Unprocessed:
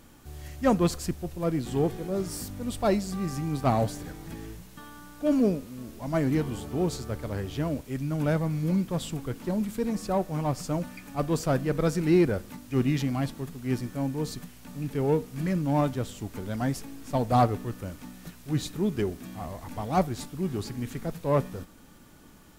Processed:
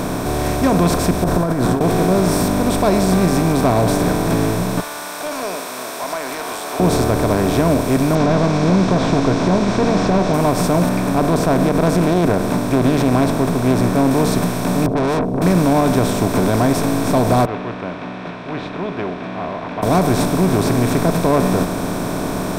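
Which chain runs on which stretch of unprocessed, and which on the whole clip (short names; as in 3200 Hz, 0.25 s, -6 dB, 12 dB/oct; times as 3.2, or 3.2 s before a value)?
1.24–1.81 resonant high shelf 1900 Hz -7 dB, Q 3 + negative-ratio compressor -37 dBFS
4.8–6.8 Bessel high-pass 1500 Hz, order 4 + compressor 3:1, threshold -49 dBFS
8.15–10.34 delta modulation 32 kbps, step -45.5 dBFS + doubler 15 ms -10.5 dB
10.89–14.11 high shelf 2300 Hz -8 dB + Doppler distortion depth 0.36 ms
14.86–15.42 elliptic band-pass 120–490 Hz, stop band 50 dB + tube stage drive 38 dB, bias 0.65
17.45–19.83 steep low-pass 2900 Hz 48 dB/oct + differentiator
whole clip: per-bin compression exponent 0.4; limiter -13.5 dBFS; ripple EQ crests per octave 1.6, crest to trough 7 dB; gain +7 dB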